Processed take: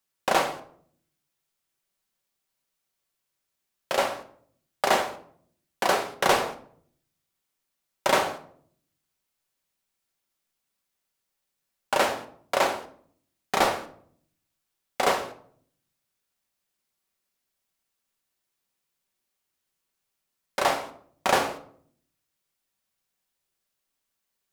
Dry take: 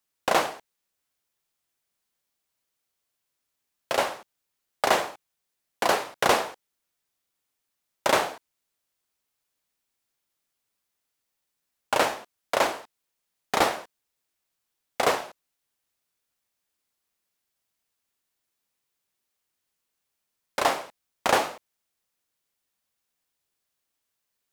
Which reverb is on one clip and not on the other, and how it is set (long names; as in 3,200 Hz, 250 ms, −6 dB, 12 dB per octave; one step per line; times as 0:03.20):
rectangular room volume 820 cubic metres, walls furnished, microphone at 1.1 metres
level −1 dB